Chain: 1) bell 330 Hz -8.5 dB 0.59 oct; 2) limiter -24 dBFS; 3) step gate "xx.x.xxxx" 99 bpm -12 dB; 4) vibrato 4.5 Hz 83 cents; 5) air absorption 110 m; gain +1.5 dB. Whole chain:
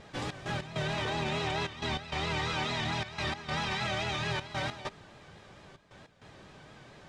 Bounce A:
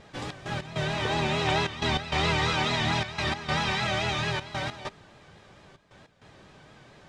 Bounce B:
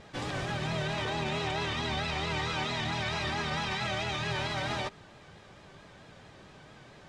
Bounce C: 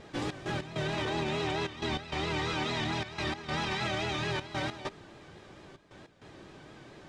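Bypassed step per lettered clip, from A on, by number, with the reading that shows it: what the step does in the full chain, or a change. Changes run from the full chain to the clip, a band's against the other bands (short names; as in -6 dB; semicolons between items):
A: 2, mean gain reduction 3.0 dB; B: 3, momentary loudness spread change -19 LU; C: 1, 250 Hz band +3.5 dB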